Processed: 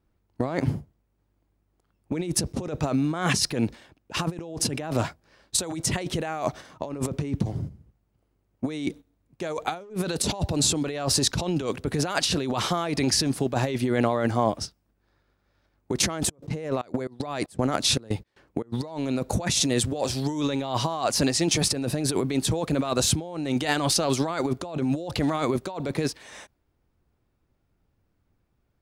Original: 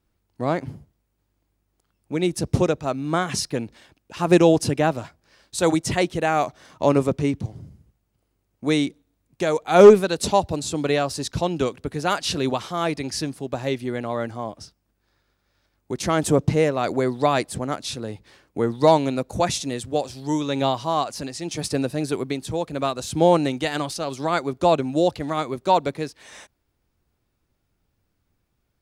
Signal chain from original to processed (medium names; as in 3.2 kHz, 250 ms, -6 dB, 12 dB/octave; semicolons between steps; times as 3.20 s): gate -40 dBFS, range -8 dB; compressor with a negative ratio -30 dBFS, ratio -1; 16.14–18.72 s: trance gate ".xxx.x.xx" 116 bpm -24 dB; tape noise reduction on one side only decoder only; trim +2.5 dB